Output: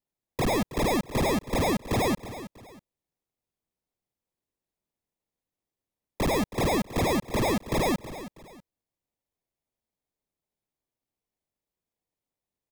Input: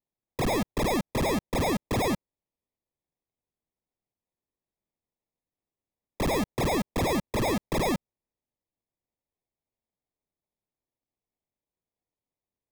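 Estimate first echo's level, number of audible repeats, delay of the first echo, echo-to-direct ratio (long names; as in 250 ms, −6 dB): −14.0 dB, 2, 322 ms, −13.5 dB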